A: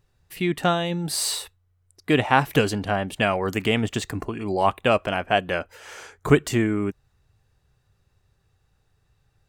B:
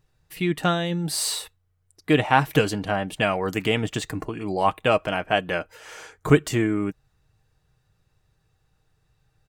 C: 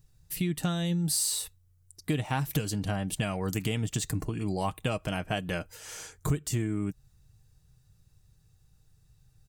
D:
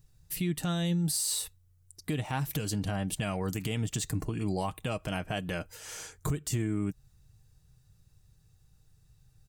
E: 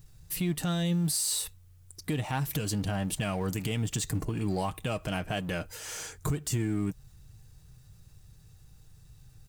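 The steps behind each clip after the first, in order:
comb 6.4 ms, depth 34%; trim -1 dB
tone controls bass +13 dB, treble +15 dB; compression 5:1, threshold -19 dBFS, peak gain reduction 15 dB; trim -7 dB
peak limiter -21 dBFS, peak gain reduction 5.5 dB
companding laws mixed up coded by mu

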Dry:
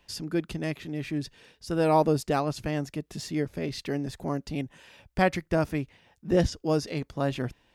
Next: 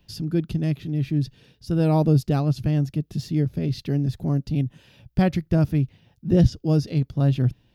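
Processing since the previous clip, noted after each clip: graphic EQ 125/500/1000/2000/8000 Hz +10/-5/-9/-9/-12 dB; trim +5 dB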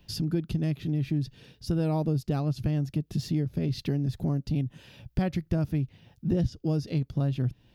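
compression 4:1, threshold -27 dBFS, peak gain reduction 13.5 dB; trim +2 dB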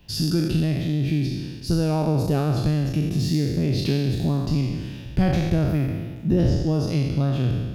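spectral sustain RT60 1.50 s; trim +4 dB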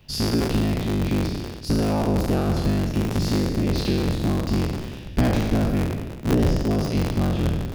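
cycle switcher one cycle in 3, inverted

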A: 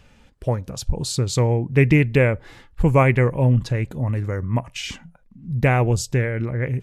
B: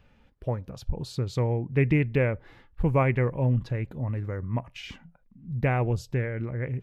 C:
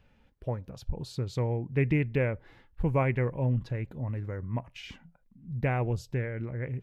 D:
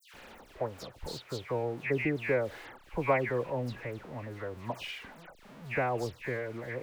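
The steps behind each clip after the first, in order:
peaking EQ 8.1 kHz -14.5 dB 1.4 oct; trim -7 dB
band-stop 1.2 kHz, Q 20; trim -3.5 dB
jump at every zero crossing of -42.5 dBFS; tone controls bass -15 dB, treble -7 dB; phase dispersion lows, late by 140 ms, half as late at 2.3 kHz; trim +2 dB

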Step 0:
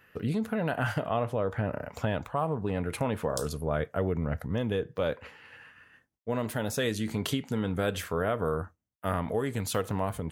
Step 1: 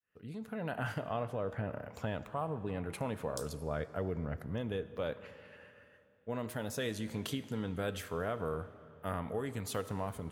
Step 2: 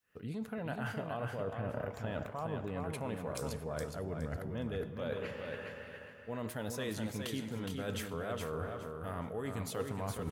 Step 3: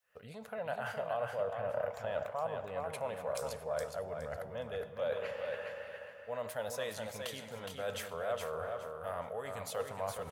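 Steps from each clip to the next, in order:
fade-in on the opening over 0.74 s; algorithmic reverb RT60 3.1 s, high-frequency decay 0.8×, pre-delay 25 ms, DRR 14.5 dB; trim -7.5 dB
reverse; compression 12:1, threshold -44 dBFS, peak gain reduction 14 dB; reverse; feedback delay 416 ms, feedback 23%, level -5 dB; trim +8.5 dB
resonant low shelf 430 Hz -9 dB, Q 3

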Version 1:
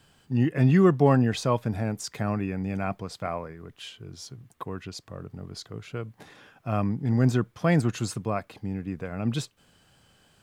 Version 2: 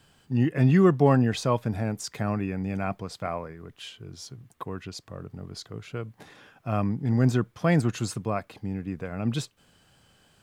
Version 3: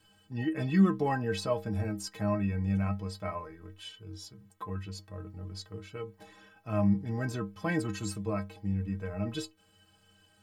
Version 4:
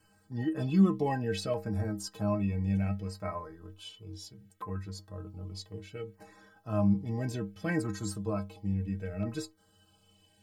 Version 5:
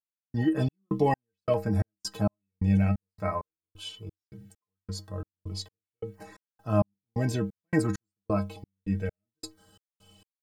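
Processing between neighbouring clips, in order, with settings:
no audible change
inharmonic resonator 94 Hz, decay 0.36 s, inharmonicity 0.03; trim +5.5 dB
LFO notch saw down 0.65 Hz 910–3600 Hz
trance gate "...xxx..xx" 132 bpm -60 dB; trim +6.5 dB

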